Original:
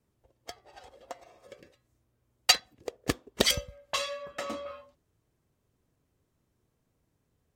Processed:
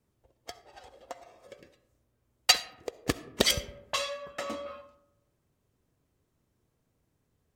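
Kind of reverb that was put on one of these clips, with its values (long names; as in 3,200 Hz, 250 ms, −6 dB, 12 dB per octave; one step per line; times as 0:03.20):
comb and all-pass reverb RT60 0.97 s, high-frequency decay 0.4×, pre-delay 25 ms, DRR 15 dB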